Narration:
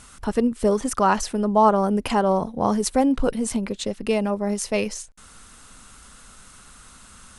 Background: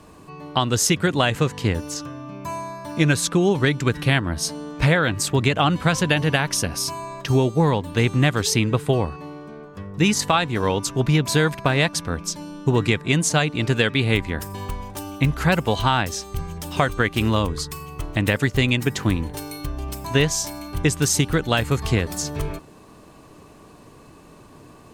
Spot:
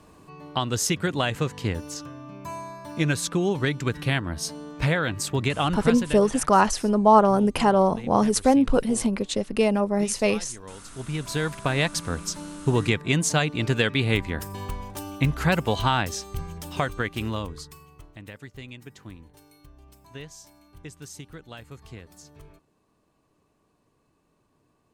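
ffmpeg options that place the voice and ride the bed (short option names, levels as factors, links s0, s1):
-filter_complex "[0:a]adelay=5500,volume=1.12[s0];[1:a]volume=4.47,afade=t=out:st=5.72:d=0.55:silence=0.158489,afade=t=in:st=10.84:d=1.13:silence=0.11885,afade=t=out:st=16.12:d=2.06:silence=0.112202[s1];[s0][s1]amix=inputs=2:normalize=0"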